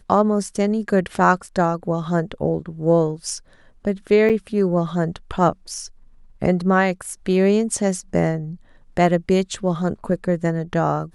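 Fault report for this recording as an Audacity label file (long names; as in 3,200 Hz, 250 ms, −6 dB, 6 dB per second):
4.290000	4.300000	drop-out 7.5 ms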